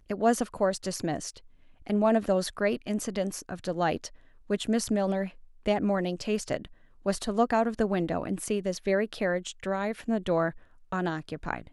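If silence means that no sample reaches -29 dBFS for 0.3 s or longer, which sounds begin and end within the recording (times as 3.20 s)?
1.90–4.06 s
4.50–5.26 s
5.66–6.65 s
7.06–10.49 s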